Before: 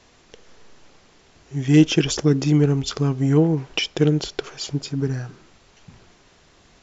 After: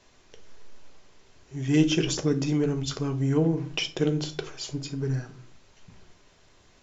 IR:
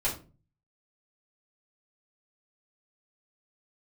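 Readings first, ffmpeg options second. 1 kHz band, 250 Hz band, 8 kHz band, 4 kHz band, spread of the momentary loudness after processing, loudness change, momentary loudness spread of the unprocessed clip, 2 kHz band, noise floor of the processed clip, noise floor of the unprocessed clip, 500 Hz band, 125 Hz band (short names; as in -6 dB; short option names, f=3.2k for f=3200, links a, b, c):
-6.0 dB, -6.5 dB, n/a, -5.0 dB, 12 LU, -6.5 dB, 14 LU, -5.5 dB, -59 dBFS, -55 dBFS, -5.5 dB, -7.5 dB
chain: -filter_complex "[0:a]asplit=2[a][b];[1:a]atrim=start_sample=2205,highshelf=f=6.6k:g=9.5[c];[b][c]afir=irnorm=-1:irlink=0,volume=-12dB[d];[a][d]amix=inputs=2:normalize=0,volume=-8dB"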